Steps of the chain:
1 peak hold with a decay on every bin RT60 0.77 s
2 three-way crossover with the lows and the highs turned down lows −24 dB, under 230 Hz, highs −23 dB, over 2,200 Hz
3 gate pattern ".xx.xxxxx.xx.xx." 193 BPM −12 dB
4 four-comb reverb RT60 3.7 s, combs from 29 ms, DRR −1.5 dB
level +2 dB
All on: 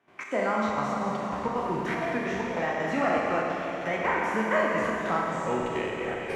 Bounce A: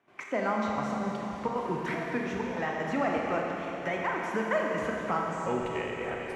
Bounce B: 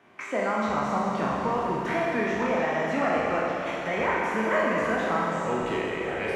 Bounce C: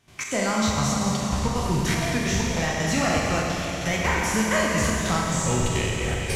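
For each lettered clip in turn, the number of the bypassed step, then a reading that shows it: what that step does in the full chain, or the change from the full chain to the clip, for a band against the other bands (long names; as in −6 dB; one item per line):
1, 125 Hz band +1.5 dB
3, change in momentary loudness spread −1 LU
2, 8 kHz band +17.0 dB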